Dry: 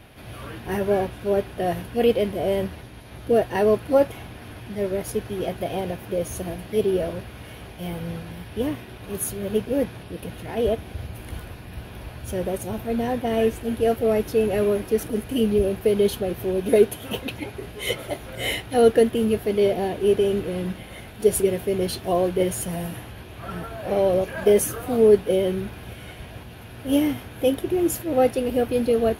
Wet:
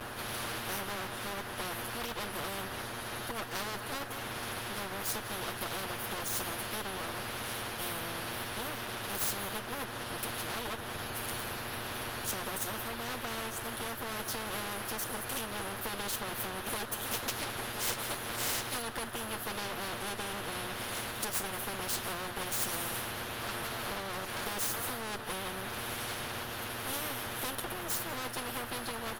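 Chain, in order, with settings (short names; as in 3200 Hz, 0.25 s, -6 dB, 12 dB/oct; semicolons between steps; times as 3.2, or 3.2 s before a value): minimum comb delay 8.5 ms; resonant high shelf 1800 Hz -6.5 dB, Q 3; compressor 2.5:1, threshold -32 dBFS, peak gain reduction 14 dB; outdoor echo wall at 31 m, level -21 dB; spectral compressor 4:1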